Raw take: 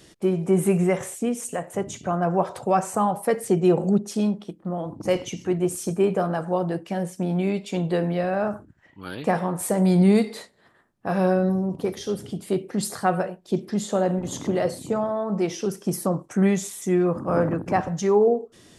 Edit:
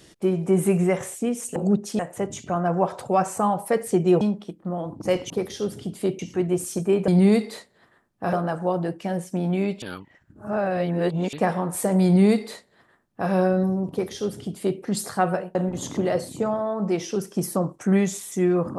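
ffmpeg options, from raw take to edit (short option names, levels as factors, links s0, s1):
-filter_complex "[0:a]asplit=11[s0][s1][s2][s3][s4][s5][s6][s7][s8][s9][s10];[s0]atrim=end=1.562[s11];[s1]atrim=start=3.778:end=4.212[s12];[s2]atrim=start=1.558:end=3.782[s13];[s3]atrim=start=4.208:end=5.302[s14];[s4]atrim=start=11.768:end=12.662[s15];[s5]atrim=start=5.298:end=6.192[s16];[s6]atrim=start=9.908:end=11.162[s17];[s7]atrim=start=6.188:end=7.682[s18];[s8]atrim=start=7.678:end=9.192,asetpts=PTS-STARTPTS,areverse[s19];[s9]atrim=start=9.188:end=13.412[s20];[s10]atrim=start=14.048[s21];[s11][s12]acrossfade=d=0.004:c1=hsin:c2=hsin[s22];[s22][s13]acrossfade=d=0.004:c1=hsin:c2=hsin[s23];[s23][s14]acrossfade=d=0.004:c1=hsin:c2=hsin[s24];[s24][s15]acrossfade=d=0.004:c1=hsin:c2=hsin[s25];[s25][s16]acrossfade=d=0.004:c1=hsin:c2=hsin[s26];[s26][s17]acrossfade=d=0.004:c1=hsin:c2=hsin[s27];[s27][s18]acrossfade=d=0.004:c1=hsin:c2=hsin[s28];[s28][s19]acrossfade=d=0.004:c1=hsin:c2=hsin[s29];[s29][s20]acrossfade=d=0.004:c1=hsin:c2=hsin[s30];[s30][s21]acrossfade=d=0.004:c1=hsin:c2=hsin"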